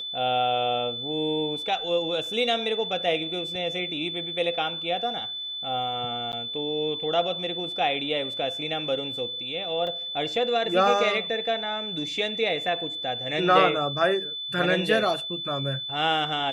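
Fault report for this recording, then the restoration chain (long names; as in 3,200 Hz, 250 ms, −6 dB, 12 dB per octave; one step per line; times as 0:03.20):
whistle 3,500 Hz −31 dBFS
0:06.32–0:06.33: drop-out 9.4 ms
0:09.87: drop-out 2.3 ms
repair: notch filter 3,500 Hz, Q 30
repair the gap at 0:06.32, 9.4 ms
repair the gap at 0:09.87, 2.3 ms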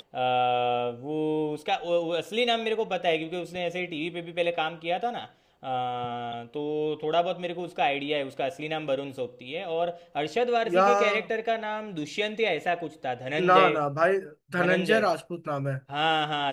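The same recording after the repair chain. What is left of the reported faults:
none of them is left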